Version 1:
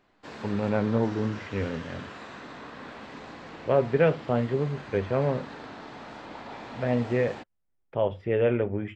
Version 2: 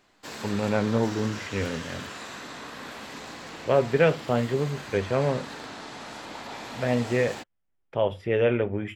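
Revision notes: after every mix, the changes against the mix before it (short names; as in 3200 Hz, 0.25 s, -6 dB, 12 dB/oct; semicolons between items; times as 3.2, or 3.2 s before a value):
master: remove tape spacing loss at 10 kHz 22 dB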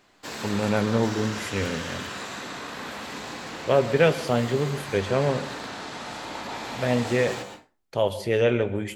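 speech: remove polynomial smoothing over 25 samples; reverb: on, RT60 0.35 s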